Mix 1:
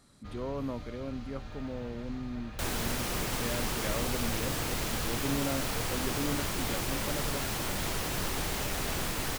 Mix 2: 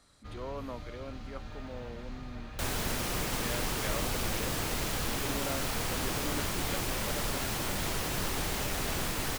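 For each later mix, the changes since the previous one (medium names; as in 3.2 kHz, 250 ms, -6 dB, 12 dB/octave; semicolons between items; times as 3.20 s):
speech: add frequency weighting A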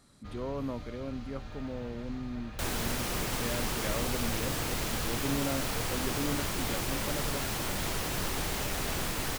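speech: remove frequency weighting A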